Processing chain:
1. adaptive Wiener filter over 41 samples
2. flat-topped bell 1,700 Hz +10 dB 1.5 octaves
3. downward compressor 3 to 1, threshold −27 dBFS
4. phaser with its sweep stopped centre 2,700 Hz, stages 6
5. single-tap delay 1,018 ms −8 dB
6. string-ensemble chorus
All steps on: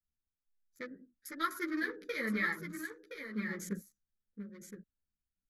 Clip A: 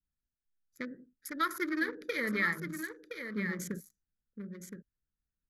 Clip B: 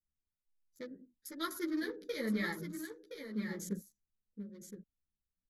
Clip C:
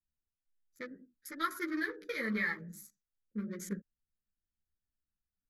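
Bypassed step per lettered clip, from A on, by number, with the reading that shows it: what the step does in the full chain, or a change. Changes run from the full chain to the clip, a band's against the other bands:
6, change in crest factor −2.0 dB
2, 2 kHz band −8.0 dB
5, change in momentary loudness spread −2 LU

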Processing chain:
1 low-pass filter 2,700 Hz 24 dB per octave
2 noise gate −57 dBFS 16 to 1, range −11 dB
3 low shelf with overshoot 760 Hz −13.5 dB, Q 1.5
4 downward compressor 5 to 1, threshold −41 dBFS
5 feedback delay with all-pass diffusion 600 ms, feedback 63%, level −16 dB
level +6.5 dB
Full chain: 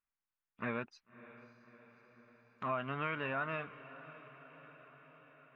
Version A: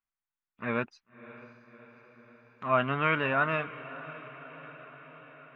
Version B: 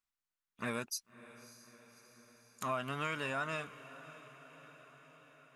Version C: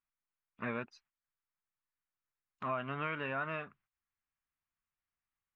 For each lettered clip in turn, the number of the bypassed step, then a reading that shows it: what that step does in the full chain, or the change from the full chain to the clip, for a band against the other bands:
4, average gain reduction 8.0 dB
1, 4 kHz band +8.0 dB
5, echo-to-direct ratio −14.0 dB to none audible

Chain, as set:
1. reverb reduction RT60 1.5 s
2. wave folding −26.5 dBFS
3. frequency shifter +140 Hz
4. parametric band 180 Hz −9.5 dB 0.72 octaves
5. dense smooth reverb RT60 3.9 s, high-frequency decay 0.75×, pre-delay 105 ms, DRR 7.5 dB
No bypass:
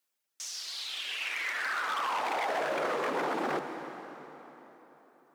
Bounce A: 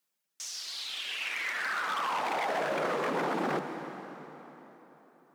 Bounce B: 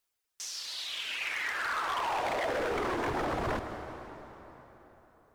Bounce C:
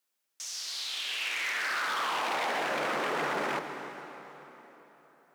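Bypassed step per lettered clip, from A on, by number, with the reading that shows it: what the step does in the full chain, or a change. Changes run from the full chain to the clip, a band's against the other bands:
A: 4, 125 Hz band +7.0 dB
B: 3, 125 Hz band +11.5 dB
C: 1, 250 Hz band −4.0 dB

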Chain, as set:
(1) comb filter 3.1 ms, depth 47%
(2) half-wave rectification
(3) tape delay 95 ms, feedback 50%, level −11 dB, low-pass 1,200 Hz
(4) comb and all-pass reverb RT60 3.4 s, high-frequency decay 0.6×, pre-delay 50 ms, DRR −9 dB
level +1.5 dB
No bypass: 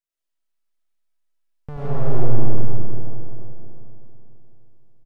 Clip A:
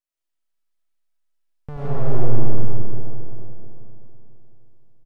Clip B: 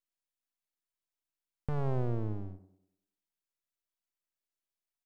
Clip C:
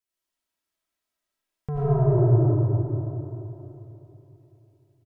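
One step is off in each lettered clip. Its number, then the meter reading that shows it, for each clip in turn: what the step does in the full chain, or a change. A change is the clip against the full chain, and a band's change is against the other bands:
3, change in momentary loudness spread −2 LU
4, change in momentary loudness spread −7 LU
2, distortion level 0 dB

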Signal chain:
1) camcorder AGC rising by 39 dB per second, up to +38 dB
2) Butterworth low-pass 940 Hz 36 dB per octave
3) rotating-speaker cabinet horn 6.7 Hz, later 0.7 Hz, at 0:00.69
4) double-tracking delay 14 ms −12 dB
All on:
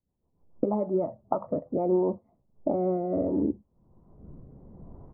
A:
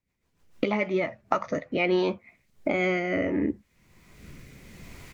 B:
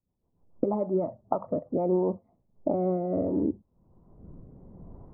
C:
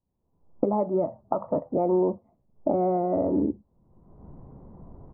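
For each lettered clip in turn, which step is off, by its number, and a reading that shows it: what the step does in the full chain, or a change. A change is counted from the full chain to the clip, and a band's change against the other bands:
2, 1 kHz band +2.5 dB
4, 125 Hz band +2.0 dB
3, 1 kHz band +3.5 dB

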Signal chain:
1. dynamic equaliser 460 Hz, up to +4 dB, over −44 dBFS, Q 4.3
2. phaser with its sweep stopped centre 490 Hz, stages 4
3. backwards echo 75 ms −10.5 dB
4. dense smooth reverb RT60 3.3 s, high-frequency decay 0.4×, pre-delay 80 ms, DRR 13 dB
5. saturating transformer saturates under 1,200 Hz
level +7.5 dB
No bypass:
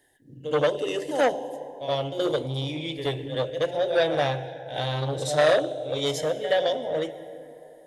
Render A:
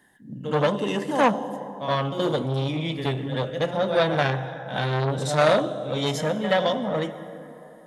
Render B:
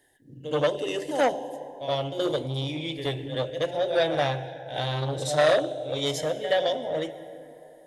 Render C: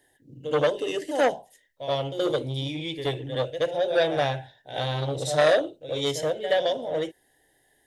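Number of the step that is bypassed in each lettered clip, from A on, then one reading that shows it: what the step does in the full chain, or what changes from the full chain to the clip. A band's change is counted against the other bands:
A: 2, change in integrated loudness +1.5 LU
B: 1, change in integrated loudness −1.0 LU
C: 4, change in momentary loudness spread −2 LU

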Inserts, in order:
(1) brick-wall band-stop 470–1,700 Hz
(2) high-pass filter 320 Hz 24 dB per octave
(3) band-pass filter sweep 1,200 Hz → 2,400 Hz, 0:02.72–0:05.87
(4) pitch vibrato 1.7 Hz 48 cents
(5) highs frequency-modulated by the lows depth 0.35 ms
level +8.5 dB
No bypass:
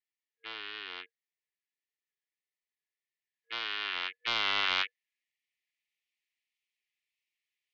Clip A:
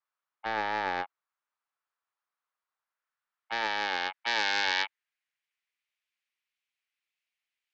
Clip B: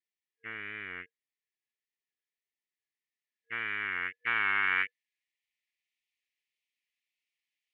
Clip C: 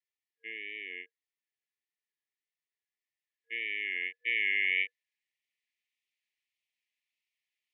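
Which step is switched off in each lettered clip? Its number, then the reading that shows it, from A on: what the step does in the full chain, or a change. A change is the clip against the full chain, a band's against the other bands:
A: 1, 4 kHz band −9.0 dB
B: 2, 4 kHz band −14.5 dB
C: 5, 2 kHz band +8.5 dB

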